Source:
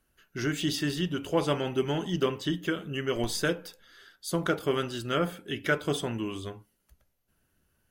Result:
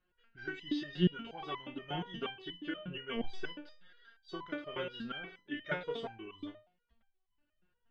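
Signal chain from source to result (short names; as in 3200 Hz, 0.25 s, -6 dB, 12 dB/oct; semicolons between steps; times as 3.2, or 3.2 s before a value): LPF 3500 Hz 24 dB/oct; stepped resonator 8.4 Hz 180–1000 Hz; gain +8 dB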